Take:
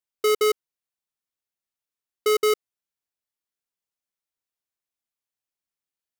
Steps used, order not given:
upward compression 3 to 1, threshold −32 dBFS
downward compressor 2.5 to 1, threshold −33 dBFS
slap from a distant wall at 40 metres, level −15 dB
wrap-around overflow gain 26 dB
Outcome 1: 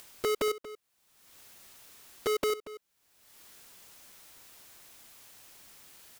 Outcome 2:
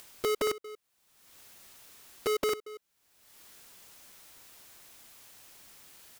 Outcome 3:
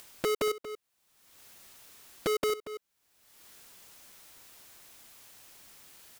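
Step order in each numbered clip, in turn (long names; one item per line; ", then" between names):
downward compressor, then upward compression, then wrap-around overflow, then slap from a distant wall
downward compressor, then upward compression, then slap from a distant wall, then wrap-around overflow
downward compressor, then wrap-around overflow, then slap from a distant wall, then upward compression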